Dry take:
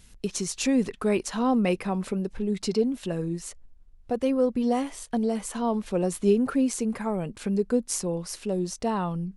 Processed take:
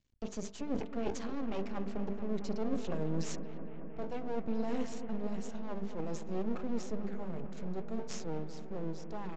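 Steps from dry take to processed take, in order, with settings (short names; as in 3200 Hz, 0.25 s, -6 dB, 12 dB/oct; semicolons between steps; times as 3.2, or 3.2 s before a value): Doppler pass-by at 2.63, 31 m/s, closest 26 m; gate -57 dBFS, range -16 dB; HPF 120 Hz 6 dB/oct; low shelf 400 Hz +9 dB; notches 50/100/150/200/250/300/350/400/450 Hz; reverse; compressor 16:1, threshold -35 dBFS, peak gain reduction 21 dB; reverse; rotary speaker horn 0.6 Hz; half-wave rectifier; on a send: analogue delay 0.223 s, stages 4096, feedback 82%, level -11.5 dB; on the sum: downsampling 16000 Hz; gain +7.5 dB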